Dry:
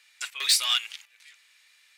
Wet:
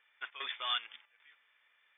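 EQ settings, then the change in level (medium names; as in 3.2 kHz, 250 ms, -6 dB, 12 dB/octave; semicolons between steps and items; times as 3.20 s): brick-wall FIR low-pass 3.6 kHz; peaking EQ 2.7 kHz -12.5 dB 1.1 oct; 0.0 dB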